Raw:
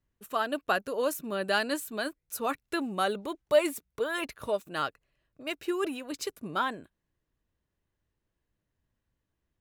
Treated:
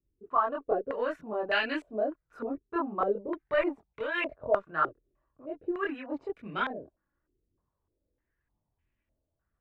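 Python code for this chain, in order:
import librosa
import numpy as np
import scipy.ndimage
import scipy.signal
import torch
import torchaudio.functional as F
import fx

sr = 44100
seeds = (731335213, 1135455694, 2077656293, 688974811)

y = fx.cheby_harmonics(x, sr, harmonics=(2,), levels_db=(-19,), full_scale_db=-11.0)
y = fx.chorus_voices(y, sr, voices=4, hz=0.51, base_ms=24, depth_ms=1.8, mix_pct=55)
y = fx.filter_held_lowpass(y, sr, hz=3.3, low_hz=370.0, high_hz=2400.0)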